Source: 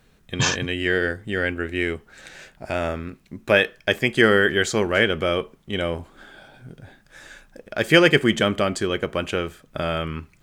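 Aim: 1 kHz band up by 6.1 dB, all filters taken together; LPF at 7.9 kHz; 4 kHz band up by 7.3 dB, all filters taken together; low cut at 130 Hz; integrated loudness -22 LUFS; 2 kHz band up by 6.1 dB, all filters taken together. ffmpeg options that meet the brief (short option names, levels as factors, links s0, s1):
-af "highpass=130,lowpass=7900,equalizer=f=1000:t=o:g=6.5,equalizer=f=2000:t=o:g=3.5,equalizer=f=4000:t=o:g=8.5,volume=0.562"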